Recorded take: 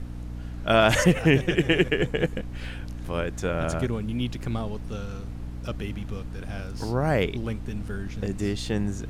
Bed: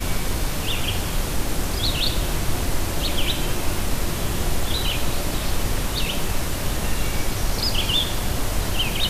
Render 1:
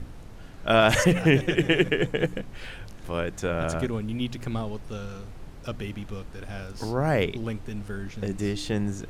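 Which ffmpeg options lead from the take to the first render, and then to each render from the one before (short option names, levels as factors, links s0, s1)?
-af "bandreject=f=60:t=h:w=4,bandreject=f=120:t=h:w=4,bandreject=f=180:t=h:w=4,bandreject=f=240:t=h:w=4,bandreject=f=300:t=h:w=4"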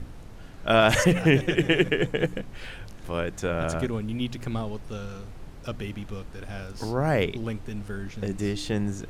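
-af anull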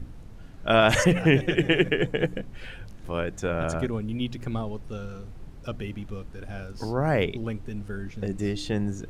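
-af "afftdn=nr=6:nf=-42"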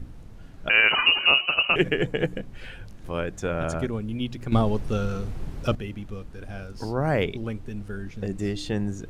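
-filter_complex "[0:a]asettb=1/sr,asplit=3[s0][s1][s2];[s0]atrim=end=0.694[s3];[s1]atrim=start=0.69:end=1.76,asetpts=PTS-STARTPTS,afade=t=in:d=0.004:c=qsin,afade=t=out:st=1.066:d=0.004:c=qsin,lowpass=f=2600:t=q:w=0.5098,lowpass=f=2600:t=q:w=0.6013,lowpass=f=2600:t=q:w=0.9,lowpass=f=2600:t=q:w=2.563,afreqshift=-3000[s4];[s2]atrim=start=1.756[s5];[s3][s4]acrossfade=d=0.004:c1=hsin:c2=qsin[s6];[s6][s5]acrossfade=d=0.004:c1=qsin:c2=hsin,asplit=3[s7][s8][s9];[s7]atrim=end=4.522[s10];[s8]atrim=start=4.518:end=5.752,asetpts=PTS-STARTPTS,volume=2.99[s11];[s9]atrim=start=5.748[s12];[s10][s11]acrossfade=d=0.004:c1=hsin:c2=hsin[s13];[s13][s12]acrossfade=d=0.004:c1=hsin:c2=hsin"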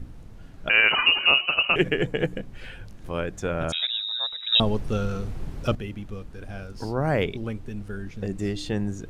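-filter_complex "[0:a]asettb=1/sr,asplit=3[s0][s1][s2];[s0]atrim=end=3.724[s3];[s1]atrim=start=3.72:end=4.6,asetpts=PTS-STARTPTS,afade=t=in:d=0.004:c=qsin,afade=t=out:st=0.876:d=0.004:c=qsin,lowpass=f=3300:t=q:w=0.5098,lowpass=f=3300:t=q:w=0.6013,lowpass=f=3300:t=q:w=0.9,lowpass=f=3300:t=q:w=2.563,afreqshift=-3900[s4];[s2]atrim=start=4.596[s5];[s3][s4]acrossfade=d=0.004:c1=hsin:c2=qsin[s6];[s6][s5]acrossfade=d=0.004:c1=qsin:c2=hsin"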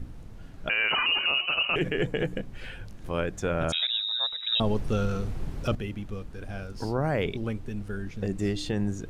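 -af "alimiter=limit=0.141:level=0:latency=1:release=24"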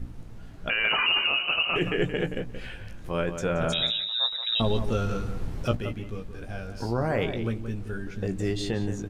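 -filter_complex "[0:a]asplit=2[s0][s1];[s1]adelay=17,volume=0.422[s2];[s0][s2]amix=inputs=2:normalize=0,asplit=2[s3][s4];[s4]adelay=175,lowpass=f=2900:p=1,volume=0.355,asplit=2[s5][s6];[s6]adelay=175,lowpass=f=2900:p=1,volume=0.15[s7];[s3][s5][s7]amix=inputs=3:normalize=0"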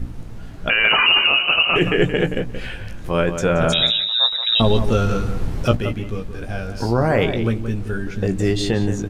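-af "volume=2.82"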